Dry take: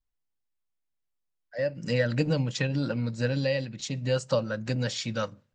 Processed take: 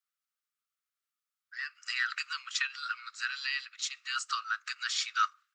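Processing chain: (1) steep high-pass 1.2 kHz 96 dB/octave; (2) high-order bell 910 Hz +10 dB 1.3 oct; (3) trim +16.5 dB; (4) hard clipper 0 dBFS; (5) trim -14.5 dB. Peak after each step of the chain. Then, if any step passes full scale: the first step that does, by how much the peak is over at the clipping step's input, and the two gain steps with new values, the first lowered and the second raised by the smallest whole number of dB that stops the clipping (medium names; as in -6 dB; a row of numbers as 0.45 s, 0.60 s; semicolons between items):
-18.0 dBFS, -18.0 dBFS, -1.5 dBFS, -1.5 dBFS, -16.0 dBFS; nothing clips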